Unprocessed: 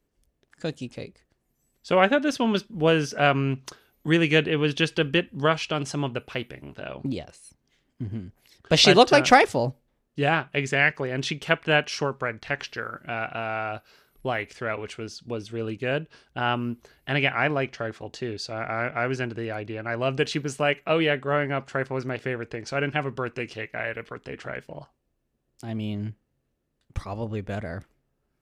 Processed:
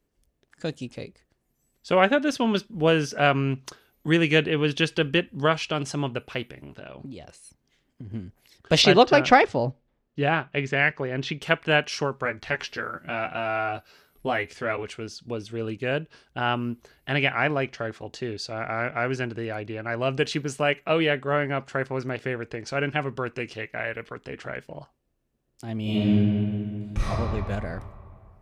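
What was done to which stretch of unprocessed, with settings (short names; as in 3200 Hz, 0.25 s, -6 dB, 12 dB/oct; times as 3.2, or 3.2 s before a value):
6.49–8.14 compressor 5:1, threshold -36 dBFS
8.82–11.41 air absorption 130 m
12.24–14.83 doubler 12 ms -3.5 dB
25.82–27.09 reverb throw, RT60 2.5 s, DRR -11 dB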